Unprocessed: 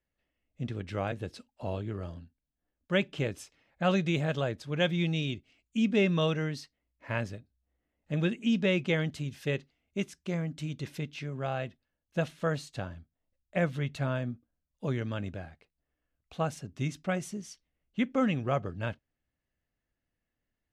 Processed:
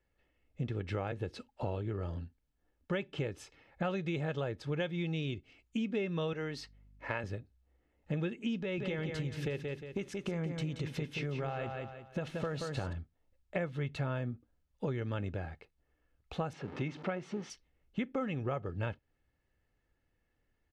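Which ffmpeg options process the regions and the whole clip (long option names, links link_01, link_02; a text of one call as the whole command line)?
ffmpeg -i in.wav -filter_complex "[0:a]asettb=1/sr,asplit=3[link_01][link_02][link_03];[link_01]atrim=end=6.334[link_04];[link_02]atrim=start=6.33:end=7.24,asetpts=PTS-STARTPTS,afade=type=in:duration=0.004:curve=qsin,afade=type=out:start_time=0.906:duration=0.004:curve=qsin,highpass=frequency=310:poles=1,aeval=exprs='val(0)+0.000447*(sin(2*PI*50*n/s)+sin(2*PI*2*50*n/s)/2+sin(2*PI*3*50*n/s)/3+sin(2*PI*4*50*n/s)/4+sin(2*PI*5*50*n/s)/5)':channel_layout=same[link_05];[link_03]atrim=start=7.236[link_06];[link_04][link_05]acrossfade=duration=0.004:curve1=hsin:curve2=qsin[link_07];[link_07][link_06]acrossfade=duration=0.004:curve1=qsin:curve2=hsin,asettb=1/sr,asplit=3[link_08][link_09][link_10];[link_08]atrim=end=8.604[link_11];[link_09]atrim=start=8.6:end=12.93,asetpts=PTS-STARTPTS,afade=type=in:duration=0.004:curve=qsin,afade=type=out:start_time=4.326:duration=0.004:curve=qsin,acompressor=threshold=-32dB:ratio=6:attack=3.2:release=140:knee=1:detection=peak,aecho=1:1:178|356|534|712:0.447|0.152|0.0516|0.0176,atrim=end_sample=190953[link_12];[link_10]atrim=start=12.926[link_13];[link_11][link_12]acrossfade=duration=0.004:curve1=hsin:curve2=qsin[link_14];[link_14][link_13]acrossfade=duration=0.004:curve1=qsin:curve2=hsin,asettb=1/sr,asplit=3[link_15][link_16][link_17];[link_15]atrim=end=16.534[link_18];[link_16]atrim=start=16.53:end=17.5,asetpts=PTS-STARTPTS,afade=type=in:duration=0.004:curve=qsin,afade=type=out:start_time=0.966:duration=0.004:curve=qsin,aeval=exprs='val(0)+0.5*0.00668*sgn(val(0))':channel_layout=same,highpass=180,lowpass=3300[link_19];[link_17]atrim=start=17.496[link_20];[link_18][link_19]acrossfade=duration=0.004:curve1=hsin:curve2=qsin[link_21];[link_21][link_20]acrossfade=duration=0.004:curve1=qsin:curve2=hsin,lowpass=frequency=2700:poles=1,aecho=1:1:2.3:0.32,acompressor=threshold=-40dB:ratio=6,volume=7dB" out.wav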